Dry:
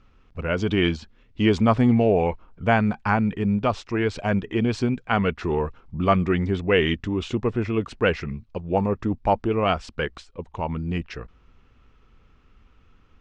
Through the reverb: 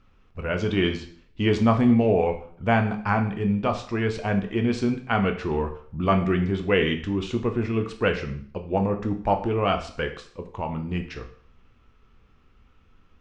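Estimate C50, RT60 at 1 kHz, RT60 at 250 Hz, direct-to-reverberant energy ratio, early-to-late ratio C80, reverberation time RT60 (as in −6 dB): 11.0 dB, 0.55 s, 0.55 s, 5.0 dB, 14.5 dB, 0.55 s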